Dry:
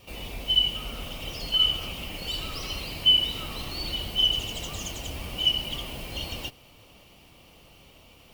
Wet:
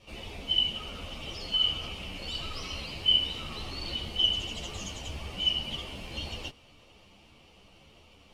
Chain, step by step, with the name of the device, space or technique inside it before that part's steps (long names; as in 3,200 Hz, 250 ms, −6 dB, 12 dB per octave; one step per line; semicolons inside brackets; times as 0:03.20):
string-machine ensemble chorus (string-ensemble chorus; low-pass filter 7,300 Hz 12 dB per octave)